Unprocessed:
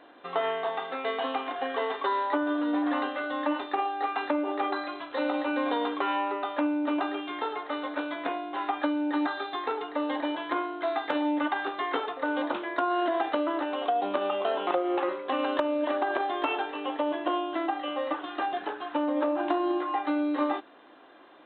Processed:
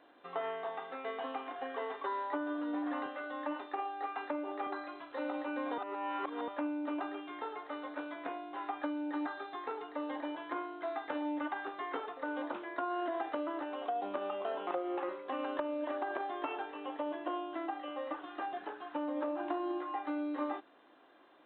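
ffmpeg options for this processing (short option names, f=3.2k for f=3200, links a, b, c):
-filter_complex "[0:a]asettb=1/sr,asplit=3[a][b][c];[a]atrim=end=3.064[d];[b]atrim=start=3.06:end=4.67,asetpts=PTS-STARTPTS,afade=t=in:d=0.004:c=qsin,afade=t=out:st=1.606:d=0.004:c=qsin,highpass=240[e];[c]atrim=start=4.666[f];[d][e]acrossfade=d=0.004:c1=hsin:c2=qsin[g];[g][f]acrossfade=d=0.004:c1=qsin:c2=hsin,asplit=3[h][i][j];[h]atrim=end=5.782[k];[i]atrim=start=5.778:end=6.482,asetpts=PTS-STARTPTS,areverse[l];[j]atrim=start=6.478[m];[k][l]acrossfade=d=0.004:c1=hsin:c2=hsin[n];[n][m]acrossfade=d=0.004:c1=hsin:c2=hsin,acrossover=split=2900[o][p];[p]acompressor=threshold=-58dB:ratio=4:attack=1:release=60[q];[o][q]amix=inputs=2:normalize=0,volume=-9dB"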